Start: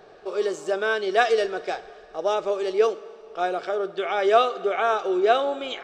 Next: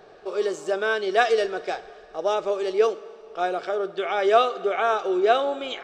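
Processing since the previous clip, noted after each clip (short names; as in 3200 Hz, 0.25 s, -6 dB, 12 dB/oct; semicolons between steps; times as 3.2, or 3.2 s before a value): nothing audible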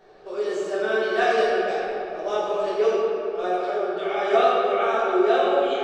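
shoebox room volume 120 m³, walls hard, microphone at 1.1 m; gain -8.5 dB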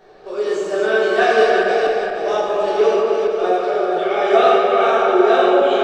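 regenerating reverse delay 0.234 s, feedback 56%, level -5 dB; gain +5 dB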